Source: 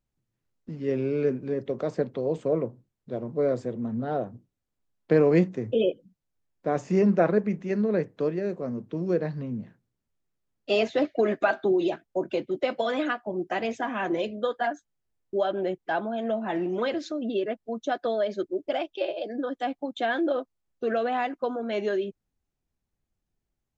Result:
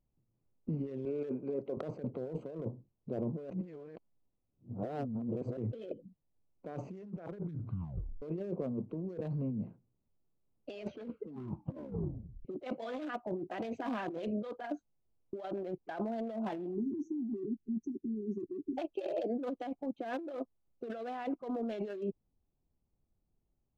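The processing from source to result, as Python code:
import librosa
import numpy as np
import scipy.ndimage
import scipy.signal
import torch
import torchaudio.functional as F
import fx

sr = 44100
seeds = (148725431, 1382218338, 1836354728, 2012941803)

y = fx.highpass(x, sr, hz=560.0, slope=6, at=(1.05, 1.77))
y = fx.brickwall_bandstop(y, sr, low_hz=410.0, high_hz=5400.0, at=(16.73, 18.77), fade=0.02)
y = fx.lowpass(y, sr, hz=1100.0, slope=6, at=(19.85, 20.29))
y = fx.edit(y, sr, fx.reverse_span(start_s=3.5, length_s=2.07),
    fx.tape_stop(start_s=7.34, length_s=0.88),
    fx.tape_stop(start_s=10.74, length_s=1.71), tone=tone)
y = fx.wiener(y, sr, points=25)
y = fx.over_compress(y, sr, threshold_db=-35.0, ratio=-1.0)
y = y * 10.0 ** (-4.0 / 20.0)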